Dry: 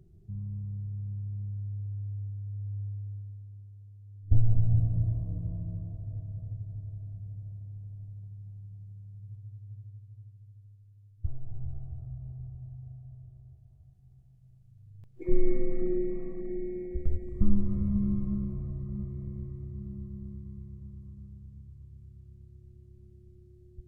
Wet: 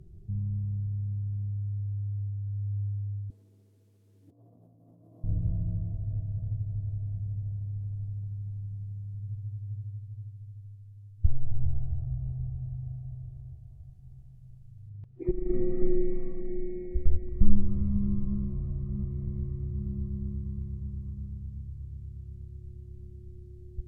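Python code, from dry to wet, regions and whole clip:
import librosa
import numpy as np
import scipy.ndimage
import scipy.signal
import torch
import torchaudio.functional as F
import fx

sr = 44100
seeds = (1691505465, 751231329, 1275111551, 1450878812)

y = fx.chain(x, sr, fx.highpass(hz=240.0, slope=24),
    fx.over_compress(threshold_db=-60.0, ratio=-1.0), at=(3.3, 5.24))
y = fx.chain(y, sr, fx.lowpass(hz=1700.0, slope=6),
    fx.over_compress(threshold_db=-20.0, ratio=-0.5),
    fx.notch_comb(f0_hz=550.0), at=(14.89, 15.82))
y = fx.low_shelf(y, sr, hz=93.0, db=8.5)
y = fx.rider(y, sr, range_db=4, speed_s=2.0)
y = fx.env_lowpass_down(y, sr, base_hz=1900.0, full_db=-13.5)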